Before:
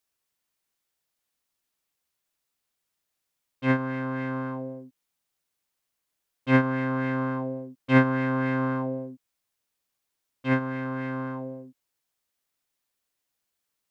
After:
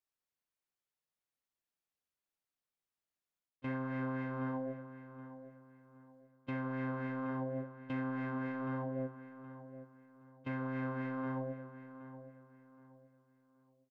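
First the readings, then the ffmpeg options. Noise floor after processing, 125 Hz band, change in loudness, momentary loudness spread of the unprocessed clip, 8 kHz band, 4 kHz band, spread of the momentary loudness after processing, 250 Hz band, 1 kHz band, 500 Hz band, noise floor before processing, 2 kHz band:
under -85 dBFS, -12.0 dB, -13.5 dB, 15 LU, n/a, under -15 dB, 15 LU, -11.5 dB, -12.0 dB, -11.0 dB, -82 dBFS, -14.5 dB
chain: -filter_complex "[0:a]agate=range=-18dB:threshold=-33dB:ratio=16:detection=peak,highshelf=f=3k:g=-7,areverse,acompressor=threshold=-35dB:ratio=5,areverse,alimiter=level_in=15.5dB:limit=-24dB:level=0:latency=1:release=33,volume=-15.5dB,flanger=delay=6.2:depth=5.5:regen=-68:speed=0.76:shape=triangular,asplit=2[a][b];[b]adelay=771,lowpass=f=2.6k:p=1,volume=-12.5dB,asplit=2[c][d];[d]adelay=771,lowpass=f=2.6k:p=1,volume=0.33,asplit=2[e][f];[f]adelay=771,lowpass=f=2.6k:p=1,volume=0.33[g];[a][c][e][g]amix=inputs=4:normalize=0,volume=12.5dB"

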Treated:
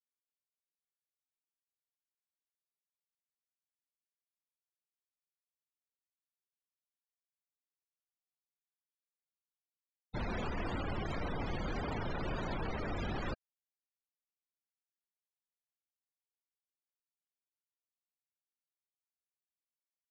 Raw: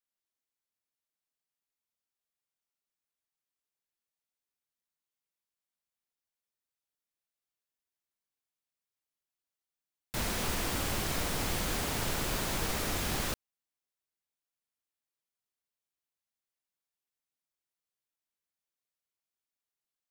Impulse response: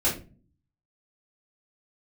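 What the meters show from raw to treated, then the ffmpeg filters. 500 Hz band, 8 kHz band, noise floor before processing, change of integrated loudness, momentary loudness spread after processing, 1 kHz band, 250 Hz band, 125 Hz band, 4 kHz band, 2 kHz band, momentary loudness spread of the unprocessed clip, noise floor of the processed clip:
-2.5 dB, -27.5 dB, under -85 dBFS, -6.5 dB, 3 LU, -3.5 dB, -2.0 dB, -2.5 dB, -13.5 dB, -6.5 dB, 3 LU, under -85 dBFS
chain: -af "afftfilt=real='re*gte(hypot(re,im),0.0251)':imag='im*gte(hypot(re,im),0.0251)':win_size=1024:overlap=0.75,adynamicsmooth=sensitivity=7.5:basefreq=5.7k,alimiter=level_in=5dB:limit=-24dB:level=0:latency=1:release=28,volume=-5dB"

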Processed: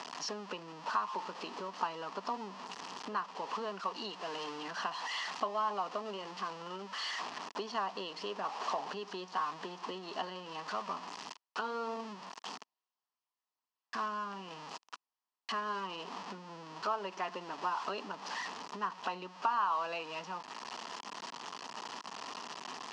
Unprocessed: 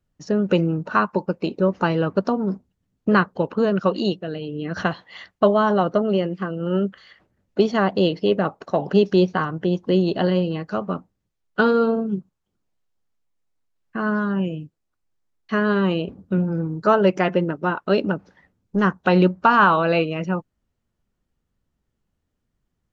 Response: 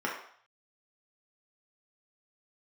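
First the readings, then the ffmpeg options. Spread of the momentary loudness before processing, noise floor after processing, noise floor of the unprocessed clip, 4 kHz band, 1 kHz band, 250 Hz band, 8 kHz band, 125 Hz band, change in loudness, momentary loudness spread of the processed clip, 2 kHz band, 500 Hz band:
11 LU, under -85 dBFS, -77 dBFS, -7.5 dB, -11.0 dB, -27.0 dB, n/a, -31.0 dB, -18.0 dB, 9 LU, -15.5 dB, -21.5 dB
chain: -af "aeval=exprs='val(0)+0.5*0.0531*sgn(val(0))':c=same,equalizer=f=420:w=0.81:g=-11,acompressor=threshold=-31dB:ratio=6,highpass=f=330:w=0.5412,highpass=f=330:w=1.3066,equalizer=f=330:t=q:w=4:g=-8,equalizer=f=550:t=q:w=4:g=-8,equalizer=f=1k:t=q:w=4:g=7,equalizer=f=1.5k:t=q:w=4:g=-9,equalizer=f=2.2k:t=q:w=4:g=-10,equalizer=f=3.7k:t=q:w=4:g=-8,lowpass=f=5.1k:w=0.5412,lowpass=f=5.1k:w=1.3066,volume=1dB"

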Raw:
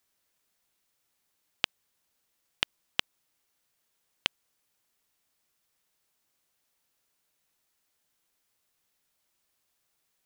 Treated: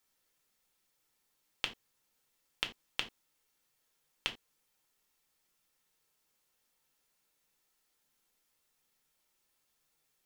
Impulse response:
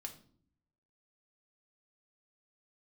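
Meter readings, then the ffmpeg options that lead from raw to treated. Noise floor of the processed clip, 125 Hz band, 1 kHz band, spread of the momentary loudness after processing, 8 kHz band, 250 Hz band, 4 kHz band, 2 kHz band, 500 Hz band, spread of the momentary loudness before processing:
-78 dBFS, -5.5 dB, -5.0 dB, 9 LU, -5.5 dB, -4.5 dB, -6.0 dB, -5.5 dB, -5.0 dB, 1 LU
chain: -filter_complex "[0:a]alimiter=limit=-8dB:level=0:latency=1[a];[1:a]atrim=start_sample=2205,atrim=end_sample=6174,asetrate=66150,aresample=44100[b];[a][b]afir=irnorm=-1:irlink=0,volume=6.5dB"

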